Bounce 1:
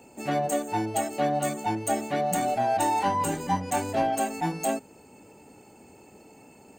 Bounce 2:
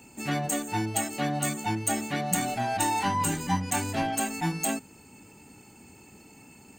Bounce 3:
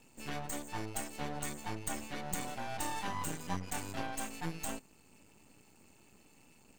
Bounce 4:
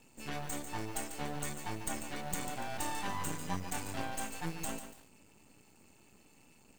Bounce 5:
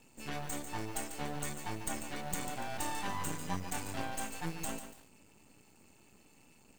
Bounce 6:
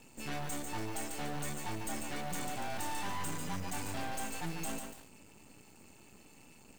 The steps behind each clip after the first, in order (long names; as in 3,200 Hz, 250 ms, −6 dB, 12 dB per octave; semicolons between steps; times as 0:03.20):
parametric band 560 Hz −13.5 dB 1.4 octaves; level +4.5 dB
half-wave rectification; level −7 dB
feedback echo at a low word length 144 ms, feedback 35%, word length 8 bits, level −9 dB
no processing that can be heard
soft clipping −34 dBFS, distortion −10 dB; level +4.5 dB